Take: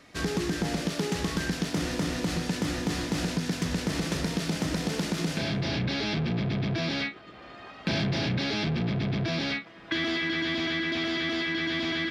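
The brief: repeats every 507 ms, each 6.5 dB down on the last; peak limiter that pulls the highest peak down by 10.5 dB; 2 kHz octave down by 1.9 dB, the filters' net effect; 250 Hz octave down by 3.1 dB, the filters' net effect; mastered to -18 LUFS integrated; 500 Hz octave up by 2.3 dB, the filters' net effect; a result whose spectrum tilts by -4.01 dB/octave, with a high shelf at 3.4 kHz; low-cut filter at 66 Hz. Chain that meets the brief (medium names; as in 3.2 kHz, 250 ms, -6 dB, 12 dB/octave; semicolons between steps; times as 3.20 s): high-pass 66 Hz; peaking EQ 250 Hz -6.5 dB; peaking EQ 500 Hz +5.5 dB; peaking EQ 2 kHz -3.5 dB; treble shelf 3.4 kHz +3.5 dB; peak limiter -24.5 dBFS; feedback delay 507 ms, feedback 47%, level -6.5 dB; trim +14 dB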